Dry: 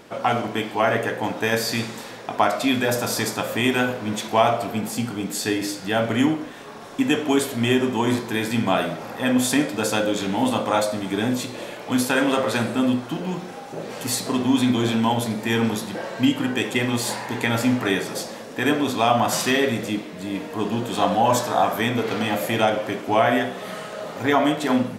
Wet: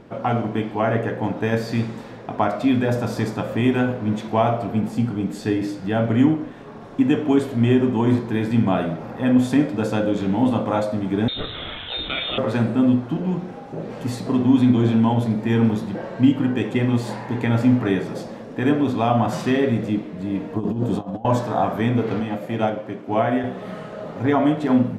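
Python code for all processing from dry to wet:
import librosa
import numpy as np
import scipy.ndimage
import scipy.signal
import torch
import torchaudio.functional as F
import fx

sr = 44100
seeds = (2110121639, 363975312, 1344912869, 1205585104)

y = fx.chain(x, sr, fx.freq_invert(carrier_hz=3900),
    fx.env_flatten(amount_pct=50), at=(11.28, 12.38))
y = fx.chain(y, sr, fx.peak_eq(hz=2200.0, db=-9.0, octaves=2.0),
    fx.over_compress(threshold_db=-27.0, ratio=-0.5), at=(20.56, 21.25))
y = fx.chain(y, sr, fx.highpass(hz=110.0, slope=12),
    fx.upward_expand(threshold_db=-27.0, expansion=1.5), at=(22.2, 23.44))
y = fx.lowpass(y, sr, hz=1700.0, slope=6)
y = fx.low_shelf(y, sr, hz=290.0, db=11.5)
y = F.gain(torch.from_numpy(y), -2.5).numpy()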